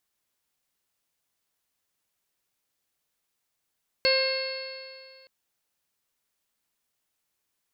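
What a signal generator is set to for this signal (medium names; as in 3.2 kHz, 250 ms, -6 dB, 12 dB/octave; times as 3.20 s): stretched partials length 1.22 s, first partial 527 Hz, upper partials -14.5/-9/-6/-7/-19/-18.5/0.5/-16 dB, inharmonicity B 0.0014, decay 2.15 s, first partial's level -22 dB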